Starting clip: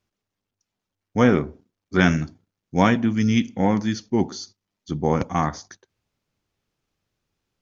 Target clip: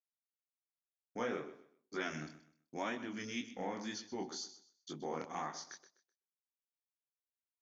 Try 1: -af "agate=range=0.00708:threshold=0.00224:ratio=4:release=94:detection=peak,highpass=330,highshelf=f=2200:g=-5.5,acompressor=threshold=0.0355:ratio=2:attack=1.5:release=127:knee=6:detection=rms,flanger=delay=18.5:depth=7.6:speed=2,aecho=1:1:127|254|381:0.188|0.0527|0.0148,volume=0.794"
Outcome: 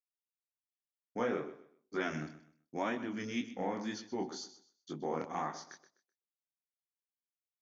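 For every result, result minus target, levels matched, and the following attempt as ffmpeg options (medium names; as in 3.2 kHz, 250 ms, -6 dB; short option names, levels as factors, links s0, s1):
compression: peak gain reduction -5 dB; 4 kHz band -5.0 dB
-af "agate=range=0.00708:threshold=0.00224:ratio=4:release=94:detection=peak,highpass=330,highshelf=f=2200:g=-5.5,acompressor=threshold=0.0126:ratio=2:attack=1.5:release=127:knee=6:detection=rms,flanger=delay=18.5:depth=7.6:speed=2,aecho=1:1:127|254|381:0.188|0.0527|0.0148,volume=0.794"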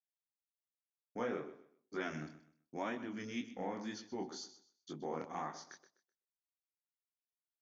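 4 kHz band -4.0 dB
-af "agate=range=0.00708:threshold=0.00224:ratio=4:release=94:detection=peak,highpass=330,highshelf=f=2200:g=3,acompressor=threshold=0.0126:ratio=2:attack=1.5:release=127:knee=6:detection=rms,flanger=delay=18.5:depth=7.6:speed=2,aecho=1:1:127|254|381:0.188|0.0527|0.0148,volume=0.794"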